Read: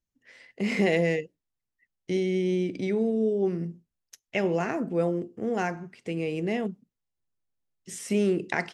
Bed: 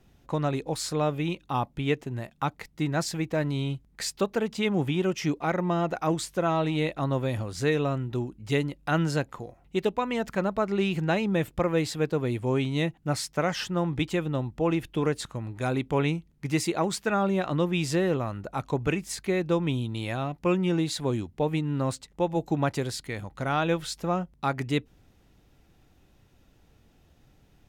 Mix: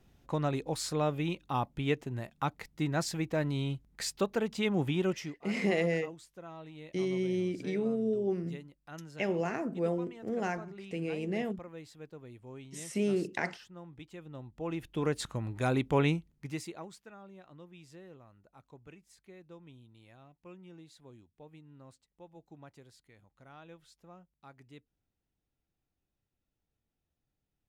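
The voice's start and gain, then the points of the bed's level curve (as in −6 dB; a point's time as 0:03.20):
4.85 s, −5.5 dB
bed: 0:05.14 −4 dB
0:05.39 −21.5 dB
0:14.08 −21.5 dB
0:15.26 −1.5 dB
0:16.12 −1.5 dB
0:17.15 −26.5 dB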